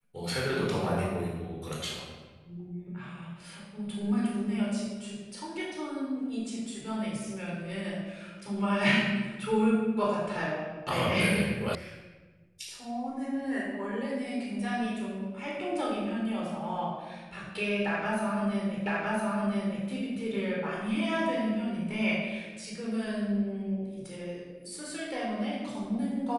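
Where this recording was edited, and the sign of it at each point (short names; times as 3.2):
11.75 sound cut off
18.86 repeat of the last 1.01 s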